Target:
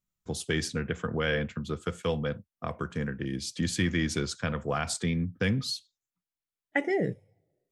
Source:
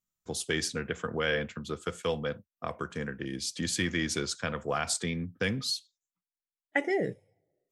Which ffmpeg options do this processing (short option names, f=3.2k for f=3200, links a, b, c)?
-af "bass=f=250:g=7,treble=f=4k:g=-3"